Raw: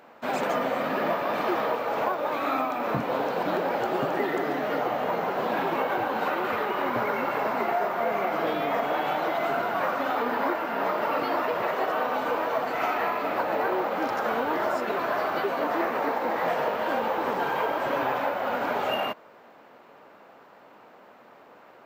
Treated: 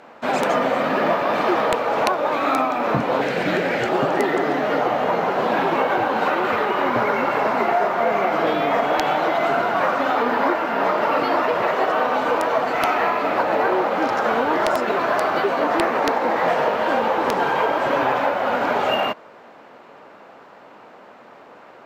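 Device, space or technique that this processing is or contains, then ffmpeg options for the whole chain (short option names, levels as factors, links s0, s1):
overflowing digital effects unit: -filter_complex "[0:a]asettb=1/sr,asplit=3[s0][s1][s2];[s0]atrim=end=3.214[s3];[s1]atrim=start=3.21:end=3.89,asetpts=PTS-STARTPTS,afade=t=in:d=0.004:c=qsin,afade=t=out:st=0.676:d=0.004:c=qsin,equalizer=f=125:t=o:w=1:g=6,equalizer=f=1000:t=o:w=1:g=-10,equalizer=f=2000:t=o:w=1:g=9,equalizer=f=8000:t=o:w=1:g=5[s4];[s2]atrim=start=3.886[s5];[s3][s4]acrossfade=d=0.004:c1=hsin:c2=qsin[s6];[s6][s5]acrossfade=d=0.004:c1=qsin:c2=hsin,aeval=exprs='(mod(5.31*val(0)+1,2)-1)/5.31':c=same,lowpass=10000,volume=2.24"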